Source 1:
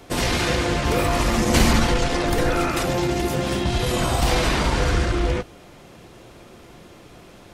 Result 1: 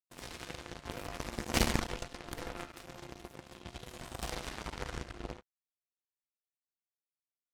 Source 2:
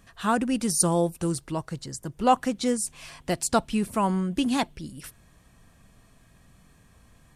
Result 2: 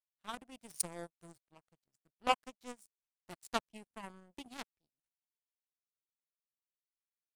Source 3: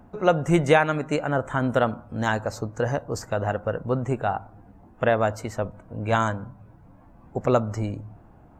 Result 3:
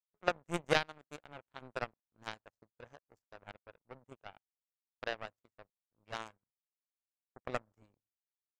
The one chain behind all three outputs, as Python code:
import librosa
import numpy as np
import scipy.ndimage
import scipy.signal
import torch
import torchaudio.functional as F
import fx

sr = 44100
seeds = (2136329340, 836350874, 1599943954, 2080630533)

y = fx.power_curve(x, sr, exponent=3.0)
y = y * librosa.db_to_amplitude(-3.5)